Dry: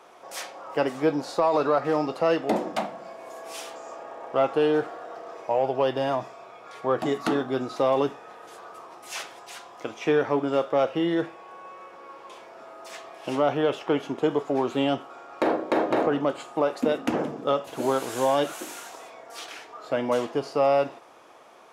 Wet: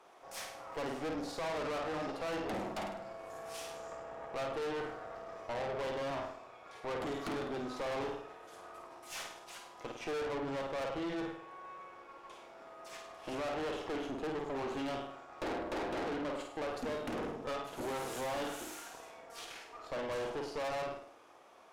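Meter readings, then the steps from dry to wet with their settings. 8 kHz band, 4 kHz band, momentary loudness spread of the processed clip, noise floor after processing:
-7.5 dB, -9.0 dB, 13 LU, -55 dBFS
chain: flutter echo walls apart 8.8 m, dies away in 0.56 s; valve stage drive 30 dB, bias 0.75; trim -5 dB

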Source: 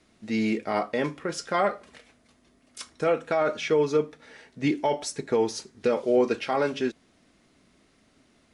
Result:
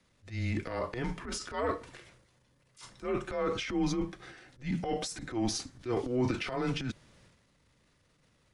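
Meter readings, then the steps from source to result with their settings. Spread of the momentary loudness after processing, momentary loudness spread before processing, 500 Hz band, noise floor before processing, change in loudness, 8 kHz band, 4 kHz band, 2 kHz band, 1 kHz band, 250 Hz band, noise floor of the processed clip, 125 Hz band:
15 LU, 8 LU, -11.0 dB, -64 dBFS, -7.5 dB, -2.5 dB, -2.5 dB, -7.0 dB, -9.0 dB, -5.0 dB, -69 dBFS, +2.0 dB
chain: transient shaper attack -11 dB, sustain +9 dB; frequency shift -120 Hz; trim -6.5 dB

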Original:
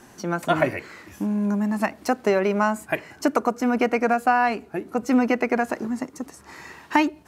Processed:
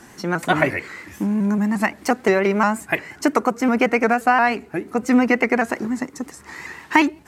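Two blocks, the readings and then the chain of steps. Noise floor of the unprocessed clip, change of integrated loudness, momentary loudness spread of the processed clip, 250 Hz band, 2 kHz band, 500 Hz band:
-50 dBFS, +3.5 dB, 12 LU, +3.5 dB, +6.0 dB, +2.0 dB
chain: graphic EQ with 31 bands 630 Hz -4 dB, 2 kHz +6 dB, 8 kHz +3 dB; vibrato with a chosen wave saw up 5.7 Hz, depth 100 cents; trim +3.5 dB

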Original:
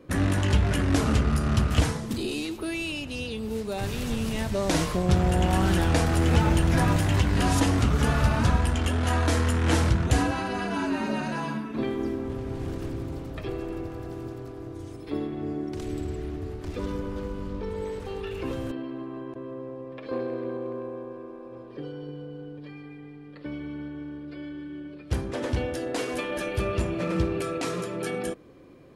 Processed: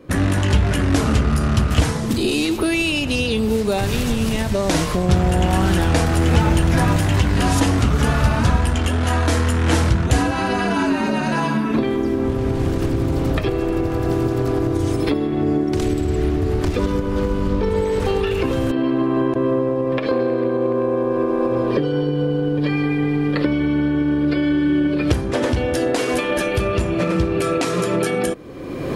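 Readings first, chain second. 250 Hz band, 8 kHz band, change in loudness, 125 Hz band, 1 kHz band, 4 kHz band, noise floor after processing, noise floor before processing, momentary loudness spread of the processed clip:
+10.0 dB, +7.0 dB, +8.0 dB, +7.0 dB, +7.5 dB, +8.0 dB, -23 dBFS, -43 dBFS, 3 LU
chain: recorder AGC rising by 32 dB/s; trim +5.5 dB

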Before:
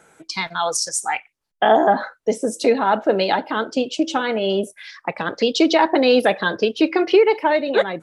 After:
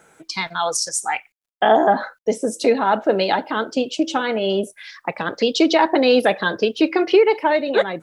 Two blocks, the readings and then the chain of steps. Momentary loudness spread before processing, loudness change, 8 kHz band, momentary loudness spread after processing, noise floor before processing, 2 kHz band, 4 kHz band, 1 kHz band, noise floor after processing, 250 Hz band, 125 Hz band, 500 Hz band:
11 LU, 0.0 dB, 0.0 dB, 11 LU, -68 dBFS, 0.0 dB, 0.0 dB, 0.0 dB, -68 dBFS, 0.0 dB, 0.0 dB, 0.0 dB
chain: bit crusher 12-bit

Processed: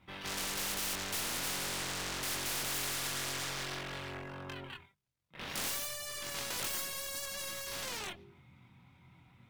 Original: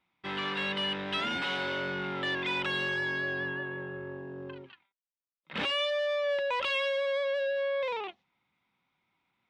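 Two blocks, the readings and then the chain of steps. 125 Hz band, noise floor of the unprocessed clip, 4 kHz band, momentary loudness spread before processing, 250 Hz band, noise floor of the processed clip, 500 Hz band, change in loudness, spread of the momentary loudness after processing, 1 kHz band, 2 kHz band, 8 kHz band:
-3.0 dB, under -85 dBFS, -4.0 dB, 12 LU, -8.0 dB, -65 dBFS, -15.0 dB, -5.0 dB, 10 LU, -6.5 dB, -9.0 dB, no reading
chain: median filter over 5 samples; Chebyshev shaper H 2 -10 dB, 3 -30 dB, 7 -32 dB, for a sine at -21 dBFS; peaking EQ 120 Hz +14 dB 1.4 oct; hum notches 50/100/150/200/250/300/350/400 Hz; pre-echo 162 ms -17.5 dB; wavefolder -32 dBFS; bass shelf 240 Hz +9 dB; chorus voices 6, 0.56 Hz, delay 23 ms, depth 2.1 ms; spectrum-flattening compressor 4:1; trim +2.5 dB

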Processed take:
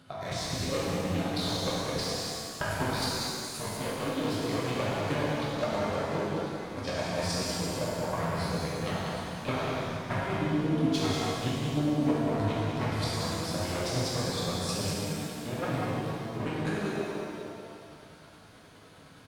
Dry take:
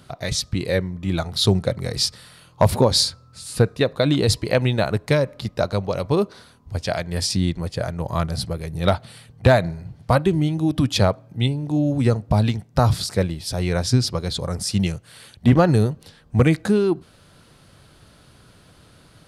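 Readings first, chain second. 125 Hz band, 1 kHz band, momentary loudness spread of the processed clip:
-12.5 dB, -6.0 dB, 7 LU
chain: one-sided wavefolder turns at -16.5 dBFS; high-pass 220 Hz 6 dB/octave; treble shelf 4.3 kHz -8 dB; compression, threshold -27 dBFS, peak gain reduction 11.5 dB; chorus 0.81 Hz, delay 19 ms, depth 8 ms; square tremolo 9.6 Hz, depth 60%, duty 20%; on a send: delay 190 ms -5.5 dB; on the sum: pitch-shifted reverb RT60 2.1 s, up +7 st, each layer -8 dB, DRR -6.5 dB

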